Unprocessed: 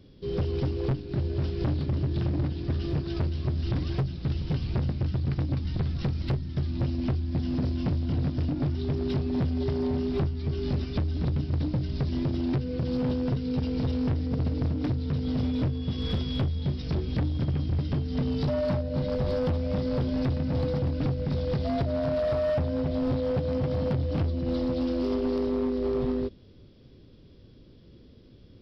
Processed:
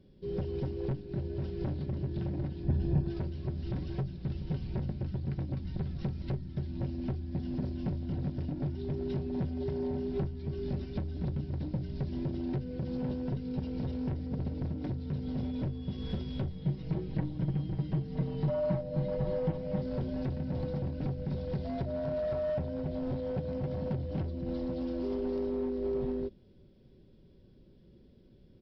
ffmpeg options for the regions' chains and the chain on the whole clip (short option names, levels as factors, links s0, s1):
-filter_complex "[0:a]asettb=1/sr,asplit=3[s0][s1][s2];[s0]atrim=end=2.644[s3];[s1]atrim=start=2.64:end=3.11,asetpts=PTS-STARTPTS,afade=t=in:d=0.004:c=qsin,afade=t=out:st=0.466:d=0.004:c=qsin,tiltshelf=f=1200:g=5.5,aecho=1:1:1.2:0.37,atrim=end_sample=20727[s4];[s2]atrim=start=3.106[s5];[s3][s4]acrossfade=d=0.004:c1=hsin:c2=qsin[s6];[s6][s5]acrossfade=d=0.004:c1=qsin:c2=hsin,asettb=1/sr,asplit=3[s7][s8][s9];[s7]atrim=end=16.504[s10];[s8]atrim=start=16.5:end=19.81,asetpts=PTS-STARTPTS,afade=t=in:d=0.004:c=qsin,afade=t=out:st=3.306:d=0.004:c=qsin,acrossover=split=3300[s11][s12];[s12]acompressor=threshold=0.00158:ratio=4:attack=1:release=60[s13];[s11][s13]amix=inputs=2:normalize=0,aecho=1:1:6.3:0.68,atrim=end_sample=145971[s14];[s9]atrim=start=19.806[s15];[s10][s14]acrossfade=d=0.004:c1=hsin:c2=qsin[s16];[s16][s15]acrossfade=d=0.004:c1=qsin:c2=hsin,highshelf=f=2000:g=-8.5,bandreject=f=1200:w=6,aecho=1:1:5.3:0.37,volume=0.501"